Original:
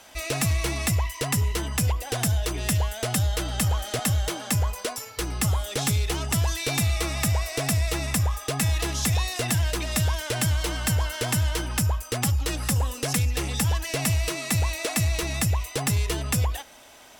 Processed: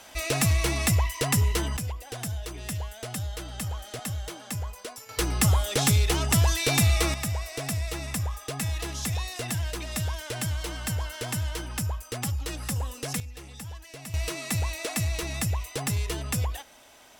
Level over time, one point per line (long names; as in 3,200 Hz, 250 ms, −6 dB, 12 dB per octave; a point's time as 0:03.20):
+1 dB
from 0:01.77 −9 dB
from 0:05.09 +2.5 dB
from 0:07.14 −6 dB
from 0:13.20 −16 dB
from 0:14.14 −4 dB